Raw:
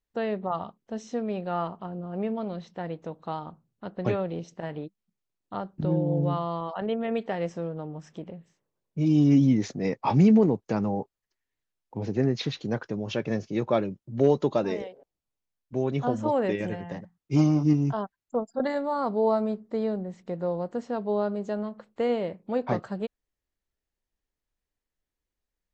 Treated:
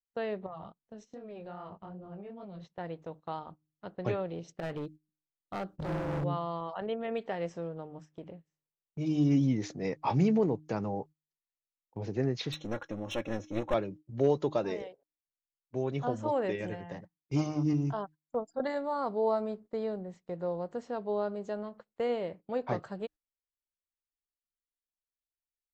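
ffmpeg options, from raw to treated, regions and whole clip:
-filter_complex "[0:a]asettb=1/sr,asplit=3[a][b][c];[a]atrim=end=0.464[d];[b]atrim=start=0.46:end=2.65,asetpts=PTS-STARTPTS,afade=t=in:d=0.004:c=qsin,afade=t=out:st=2.186:d=0.004:c=qsin,bass=f=250:g=6,treble=f=4k:g=-1,flanger=delay=20:depth=5.1:speed=2.5,acompressor=threshold=-34dB:ratio=12:attack=3.2:release=140:knee=1:detection=peak[e];[c]atrim=start=2.646[f];[d][e]acrossfade=d=0.004:c1=hsin:c2=qsin[g];[g][f]acrossfade=d=0.004:c1=qsin:c2=hsin,asettb=1/sr,asplit=3[h][i][j];[h]atrim=end=4.494[k];[i]atrim=start=4.49:end=6.24,asetpts=PTS-STARTPTS,afade=t=in:d=0.004:c=qsin,afade=t=out:st=1.746:d=0.004:c=qsin,equalizer=f=970:w=5.4:g=-8.5,acontrast=44,asoftclip=type=hard:threshold=-26dB[l];[j]atrim=start=6.236[m];[k][l]acrossfade=d=0.004:c1=hsin:c2=qsin[n];[n][m]acrossfade=d=0.004:c1=qsin:c2=hsin,asettb=1/sr,asplit=3[o][p][q];[o]atrim=end=12.524[r];[p]atrim=start=12.52:end=13.74,asetpts=PTS-STARTPTS,afade=t=in:d=0.004:c=qsin,afade=t=out:st=1.216:d=0.004:c=qsin,aecho=1:1:3.6:0.83,atrim=end_sample=53802,aeval=exprs='clip(val(0),-1,0.0251)':c=same,asuperstop=centerf=4700:order=12:qfactor=4.6[s];[q]atrim=start=13.736[t];[r][s]acrossfade=d=0.004:c1=hsin:c2=qsin[u];[u][t]acrossfade=d=0.004:c1=qsin:c2=hsin,bandreject=f=153.6:t=h:w=4,bandreject=f=307.2:t=h:w=4,agate=range=-16dB:threshold=-42dB:ratio=16:detection=peak,equalizer=f=220:t=o:w=0.64:g=-5,volume=-4.5dB"

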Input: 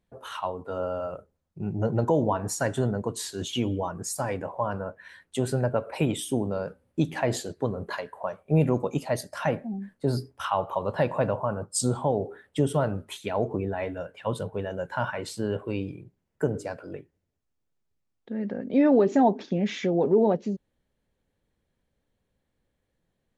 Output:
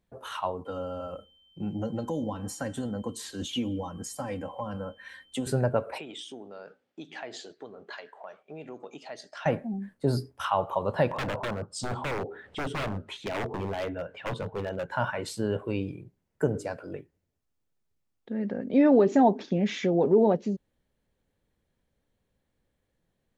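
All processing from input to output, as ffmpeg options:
-filter_complex "[0:a]asettb=1/sr,asplit=3[a][b][c];[a]atrim=end=0.654[d];[b]atrim=start=0.65:end=5.47,asetpts=PTS-STARTPTS,afade=t=in:d=0.004:c=qsin,afade=t=out:st=4.816:d=0.004:c=qsin,acrossover=split=250|3500[e][f][g];[e]acompressor=threshold=-31dB:ratio=4[h];[f]acompressor=threshold=-37dB:ratio=4[i];[g]acompressor=threshold=-43dB:ratio=4[j];[h][i][j]amix=inputs=3:normalize=0,aeval=exprs='val(0)+0.000891*sin(2*PI*3100*n/s)':c=same,aecho=1:1:3.8:0.63,atrim=end_sample=212562[k];[c]atrim=start=5.466[l];[d][k]acrossfade=d=0.004:c1=hsin:c2=qsin[m];[m][l]acrossfade=d=0.004:c1=qsin:c2=hsin,asettb=1/sr,asplit=3[n][o][p];[n]atrim=end=5.984[q];[o]atrim=start=5.98:end=9.46,asetpts=PTS-STARTPTS,afade=t=in:d=0.004:c=qsin,afade=t=out:st=3.476:d=0.004:c=qsin,acompressor=threshold=-39dB:ratio=2:attack=3.2:release=140:knee=1:detection=peak,highpass=390,equalizer=f=540:t=q:w=4:g=-7,equalizer=f=1k:t=q:w=4:g=-7,equalizer=f=3.3k:t=q:w=4:g=4,lowpass=f=6.3k:w=0.5412,lowpass=f=6.3k:w=1.3066[r];[p]atrim=start=9.456[s];[q][r]acrossfade=d=0.004:c1=hsin:c2=qsin[t];[t][s]acrossfade=d=0.004:c1=qsin:c2=hsin,asettb=1/sr,asplit=3[u][v][w];[u]atrim=end=11.114[x];[v]atrim=start=11.11:end=14.91,asetpts=PTS-STARTPTS,afade=t=in:d=0.004:c=qsin,afade=t=out:st=3.796:d=0.004:c=qsin,lowpass=4.3k,aeval=exprs='0.0531*(abs(mod(val(0)/0.0531+3,4)-2)-1)':c=same,acompressor=mode=upward:threshold=-37dB:ratio=2.5:attack=3.2:release=140:knee=2.83:detection=peak[y];[w]atrim=start=14.906[z];[x][y]acrossfade=d=0.004:c1=hsin:c2=qsin[aa];[aa][z]acrossfade=d=0.004:c1=qsin:c2=hsin"

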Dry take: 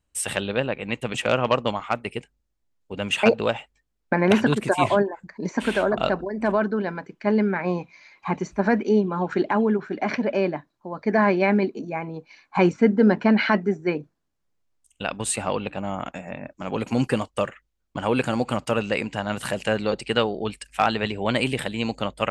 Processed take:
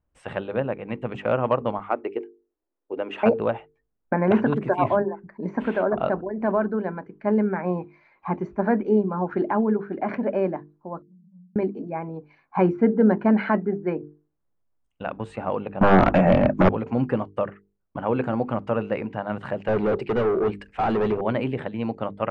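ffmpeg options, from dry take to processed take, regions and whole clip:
-filter_complex "[0:a]asettb=1/sr,asplit=3[a][b][c];[a]atrim=end=1.894[d];[b]atrim=start=1.89:end=3.2,asetpts=PTS-STARTPTS,afade=t=in:d=0.004:c=qsin,afade=t=out:st=1.306:d=0.004:c=qsin,lowpass=9k,lowshelf=f=220:t=q:w=3:g=-14[e];[c]atrim=start=3.196[f];[d][e]acrossfade=d=0.004:c1=hsin:c2=qsin[g];[g][f]acrossfade=d=0.004:c1=qsin:c2=hsin,asettb=1/sr,asplit=3[h][i][j];[h]atrim=end=11.024[k];[i]atrim=start=11.02:end=11.56,asetpts=PTS-STARTPTS,afade=t=in:d=0.004:c=qsin,afade=t=out:st=0.536:d=0.004:c=qsin,asuperpass=centerf=170:order=8:qfactor=7.3,acompressor=threshold=-49dB:ratio=5:attack=3.2:release=140:knee=1:detection=peak[l];[j]atrim=start=11.556[m];[k][l]acrossfade=d=0.004:c1=hsin:c2=qsin[n];[n][m]acrossfade=d=0.004:c1=qsin:c2=hsin,asettb=1/sr,asplit=3[o][p][q];[o]atrim=end=15.814[r];[p]atrim=start=15.81:end=16.69,asetpts=PTS-STARTPTS,afade=t=in:d=0.004:c=qsin,afade=t=out:st=0.876:d=0.004:c=qsin,acontrast=51,acrusher=bits=6:mode=log:mix=0:aa=0.000001,aeval=exprs='0.376*sin(PI/2*4.47*val(0)/0.376)':c=same[s];[q]atrim=start=16.686[t];[r][s]acrossfade=d=0.004:c1=hsin:c2=qsin[u];[u][t]acrossfade=d=0.004:c1=qsin:c2=hsin,asettb=1/sr,asplit=3[v][w][x];[v]atrim=end=19.684[y];[w]atrim=start=19.68:end=21.21,asetpts=PTS-STARTPTS,afade=t=in:d=0.004:c=qsin,afade=t=out:st=1.526:d=0.004:c=qsin,equalizer=f=400:t=o:w=0.4:g=8.5,acontrast=86,asoftclip=type=hard:threshold=-18.5dB[z];[x]atrim=start=21.206[aa];[y][z]acrossfade=d=0.004:c1=hsin:c2=qsin[ab];[ab][aa]acrossfade=d=0.004:c1=qsin:c2=hsin,lowpass=1.3k,bandreject=f=50:t=h:w=6,bandreject=f=100:t=h:w=6,bandreject=f=150:t=h:w=6,bandreject=f=200:t=h:w=6,bandreject=f=250:t=h:w=6,bandreject=f=300:t=h:w=6,bandreject=f=350:t=h:w=6,bandreject=f=400:t=h:w=6,bandreject=f=450:t=h:w=6"

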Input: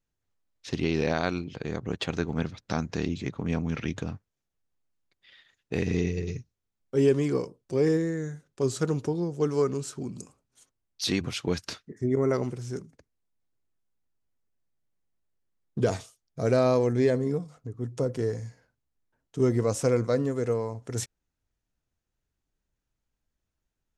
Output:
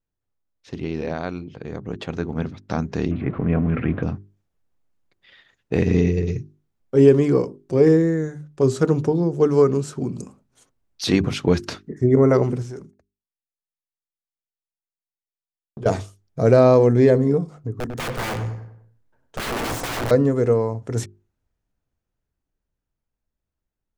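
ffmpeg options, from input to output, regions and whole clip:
-filter_complex "[0:a]asettb=1/sr,asplit=3[a][b][c];[a]atrim=end=3.114[d];[b]atrim=start=3.11:end=4.03,asetpts=PTS-STARTPTS,afade=t=in:d=0.004:c=qsin,afade=t=out:st=0.916:d=0.004:c=qsin,aeval=exprs='val(0)+0.5*0.0126*sgn(val(0))':c=same,lowpass=f=2.4k:w=0.5412,lowpass=f=2.4k:w=1.3066,bandreject=f=890:w=6.5[e];[c]atrim=start=4.026[f];[d][e]acrossfade=d=0.004:c1=hsin:c2=qsin[g];[g][f]acrossfade=d=0.004:c1=qsin:c2=hsin,asettb=1/sr,asplit=3[h][i][j];[h]atrim=end=12.624[k];[i]atrim=start=12.62:end=15.86,asetpts=PTS-STARTPTS,afade=t=in:d=0.004:c=qsin,afade=t=out:st=3.236:d=0.004:c=qsin,agate=range=-33dB:threshold=-48dB:ratio=3:release=100:detection=peak,equalizer=f=160:w=0.61:g=-7,acompressor=threshold=-40dB:ratio=6:attack=3.2:release=140:knee=1:detection=peak[l];[j]atrim=start=15.856[m];[k][l]acrossfade=d=0.004:c1=hsin:c2=qsin[n];[n][m]acrossfade=d=0.004:c1=qsin:c2=hsin,asettb=1/sr,asplit=3[o][p][q];[o]atrim=end=17.794[r];[p]atrim=start=17.79:end=20.11,asetpts=PTS-STARTPTS,afade=t=in:d=0.004:c=qsin,afade=t=out:st=2.316:d=0.004:c=qsin,bandreject=f=60:t=h:w=6,bandreject=f=120:t=h:w=6,bandreject=f=180:t=h:w=6,bandreject=f=240:t=h:w=6,bandreject=f=300:t=h:w=6,aeval=exprs='(mod(26.6*val(0)+1,2)-1)/26.6':c=same,asplit=2[s][t];[t]adelay=98,lowpass=f=2.1k:p=1,volume=-7dB,asplit=2[u][v];[v]adelay=98,lowpass=f=2.1k:p=1,volume=0.44,asplit=2[w][x];[x]adelay=98,lowpass=f=2.1k:p=1,volume=0.44,asplit=2[y][z];[z]adelay=98,lowpass=f=2.1k:p=1,volume=0.44,asplit=2[aa][ab];[ab]adelay=98,lowpass=f=2.1k:p=1,volume=0.44[ac];[s][u][w][y][aa][ac]amix=inputs=6:normalize=0,atrim=end_sample=102312[ad];[q]atrim=start=20.106[ae];[r][ad]acrossfade=d=0.004:c1=hsin:c2=qsin[af];[af][ae]acrossfade=d=0.004:c1=qsin:c2=hsin,highshelf=f=2k:g=-10,bandreject=f=50:t=h:w=6,bandreject=f=100:t=h:w=6,bandreject=f=150:t=h:w=6,bandreject=f=200:t=h:w=6,bandreject=f=250:t=h:w=6,bandreject=f=300:t=h:w=6,bandreject=f=350:t=h:w=6,bandreject=f=400:t=h:w=6,dynaudnorm=f=190:g=31:m=12.5dB"

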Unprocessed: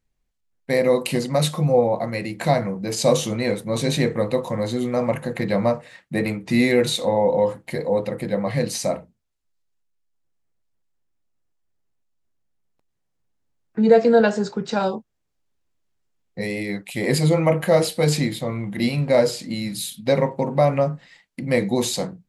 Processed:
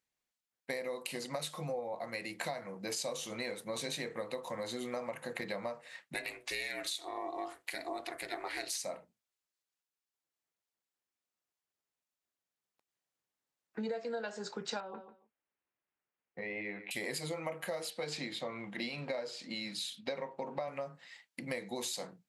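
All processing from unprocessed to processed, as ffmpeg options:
-filter_complex "[0:a]asettb=1/sr,asplit=3[a][b][c];[a]atrim=end=6.144[d];[b]atrim=start=6.14:end=8.82,asetpts=PTS-STARTPTS,afade=t=in:d=0.004:c=qsin,afade=t=out:st=2.676:d=0.004:c=qsin,tiltshelf=f=840:g=-6.5,aeval=exprs='val(0)*sin(2*PI*180*n/s)':c=same[e];[c]atrim=start=8.816[f];[d][e]acrossfade=d=0.004:c1=hsin:c2=qsin[g];[g][f]acrossfade=d=0.004:c1=qsin:c2=hsin,asettb=1/sr,asplit=3[h][i][j];[h]atrim=end=14.804[k];[i]atrim=start=14.8:end=16.91,asetpts=PTS-STARTPTS,afade=t=in:d=0.004:c=qsin,afade=t=out:st=2.106:d=0.004:c=qsin,lowpass=f=2.6k:w=0.5412,lowpass=f=2.6k:w=1.3066,acompressor=threshold=-26dB:ratio=5:attack=3.2:release=140:knee=1:detection=peak,aecho=1:1:143|286:0.211|0.038,atrim=end_sample=93051[l];[j]atrim=start=16.906[m];[k][l]acrossfade=d=0.004:c1=hsin:c2=qsin[n];[n][m]acrossfade=d=0.004:c1=qsin:c2=hsin,asettb=1/sr,asplit=3[o][p][q];[o]atrim=end=17.904[r];[p]atrim=start=17.9:end=20.68,asetpts=PTS-STARTPTS,afade=t=in:d=0.004:c=qsin,afade=t=out:st=2.776:d=0.004:c=qsin,highpass=130,lowpass=5.3k,bandreject=f=2k:w=30[s];[q]atrim=start=20.676[t];[r][s]acrossfade=d=0.004:c1=hsin:c2=qsin[u];[u][t]acrossfade=d=0.004:c1=qsin:c2=hsin,highpass=f=880:p=1,acompressor=threshold=-32dB:ratio=12,volume=-3dB"

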